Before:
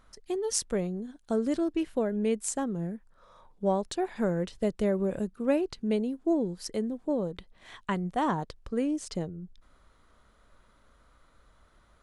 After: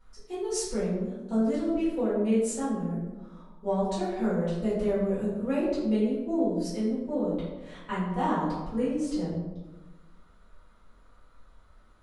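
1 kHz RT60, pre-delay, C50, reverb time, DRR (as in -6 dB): 1.2 s, 3 ms, 0.5 dB, 1.2 s, -12.5 dB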